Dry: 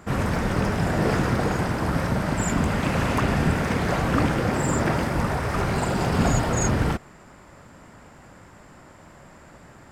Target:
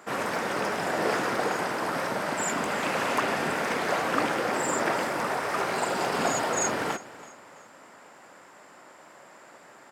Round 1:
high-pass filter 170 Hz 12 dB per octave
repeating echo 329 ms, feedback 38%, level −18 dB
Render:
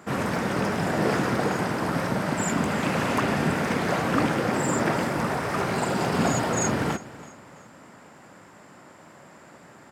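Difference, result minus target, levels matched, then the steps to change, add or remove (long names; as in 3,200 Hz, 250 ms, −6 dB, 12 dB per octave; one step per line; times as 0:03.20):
125 Hz band +11.0 dB
change: high-pass filter 410 Hz 12 dB per octave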